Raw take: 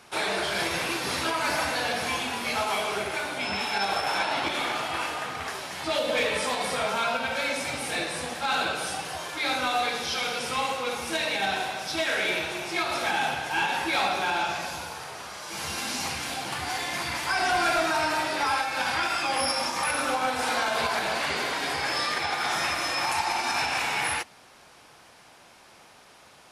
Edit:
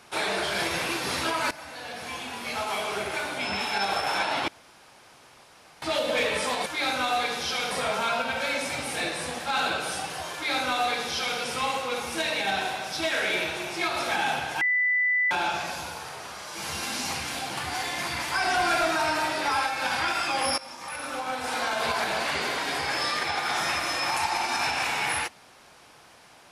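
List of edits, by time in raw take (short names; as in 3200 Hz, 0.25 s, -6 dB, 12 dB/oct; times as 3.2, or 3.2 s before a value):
1.51–3.18 fade in, from -18 dB
4.48–5.82 room tone
9.29–10.34 copy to 6.66
13.56–14.26 bleep 1990 Hz -20.5 dBFS
19.53–20.92 fade in, from -16.5 dB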